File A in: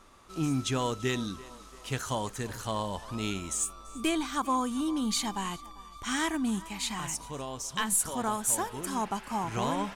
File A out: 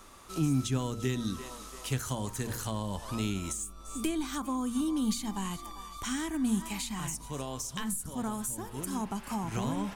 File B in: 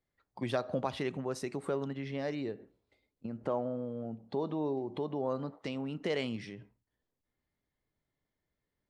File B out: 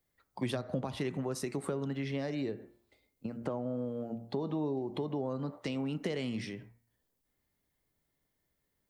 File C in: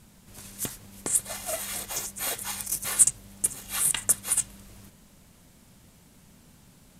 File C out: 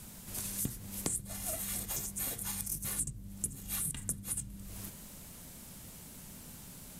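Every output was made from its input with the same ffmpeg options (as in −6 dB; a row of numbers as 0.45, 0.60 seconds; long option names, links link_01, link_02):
-filter_complex "[0:a]highshelf=frequency=8400:gain=11,bandreject=frequency=117:width_type=h:width=4,bandreject=frequency=234:width_type=h:width=4,bandreject=frequency=351:width_type=h:width=4,bandreject=frequency=468:width_type=h:width=4,bandreject=frequency=585:width_type=h:width=4,bandreject=frequency=702:width_type=h:width=4,bandreject=frequency=819:width_type=h:width=4,bandreject=frequency=936:width_type=h:width=4,bandreject=frequency=1053:width_type=h:width=4,bandreject=frequency=1170:width_type=h:width=4,bandreject=frequency=1287:width_type=h:width=4,bandreject=frequency=1404:width_type=h:width=4,bandreject=frequency=1521:width_type=h:width=4,bandreject=frequency=1638:width_type=h:width=4,bandreject=frequency=1755:width_type=h:width=4,bandreject=frequency=1872:width_type=h:width=4,bandreject=frequency=1989:width_type=h:width=4,bandreject=frequency=2106:width_type=h:width=4,bandreject=frequency=2223:width_type=h:width=4,bandreject=frequency=2340:width_type=h:width=4,acrossover=split=280[link_01][link_02];[link_02]acompressor=threshold=-39dB:ratio=8[link_03];[link_01][link_03]amix=inputs=2:normalize=0,volume=3.5dB"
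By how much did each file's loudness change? −2.5, 0.0, −10.5 LU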